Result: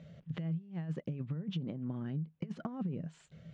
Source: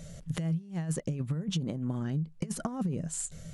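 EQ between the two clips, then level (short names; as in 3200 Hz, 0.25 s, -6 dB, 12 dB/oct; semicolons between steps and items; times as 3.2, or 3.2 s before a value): HPF 120 Hz 12 dB/oct; ladder low-pass 3900 Hz, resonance 25%; low shelf 450 Hz +5.5 dB; -3.0 dB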